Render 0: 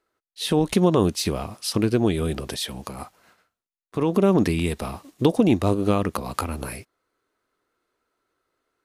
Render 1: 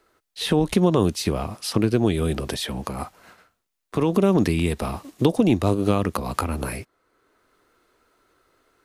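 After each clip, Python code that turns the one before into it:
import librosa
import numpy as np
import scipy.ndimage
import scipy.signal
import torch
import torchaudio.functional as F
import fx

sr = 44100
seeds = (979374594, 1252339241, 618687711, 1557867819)

y = fx.low_shelf(x, sr, hz=63.0, db=6.5)
y = fx.band_squash(y, sr, depth_pct=40)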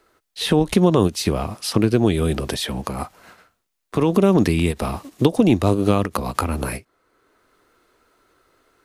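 y = fx.end_taper(x, sr, db_per_s=400.0)
y = y * 10.0 ** (3.0 / 20.0)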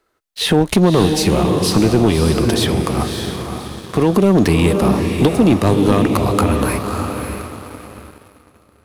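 y = fx.echo_diffused(x, sr, ms=589, feedback_pct=41, wet_db=-6)
y = fx.leveller(y, sr, passes=2)
y = y * 10.0 ** (-2.0 / 20.0)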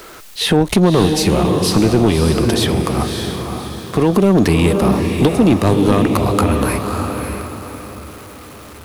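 y = x + 0.5 * 10.0 ** (-31.5 / 20.0) * np.sign(x)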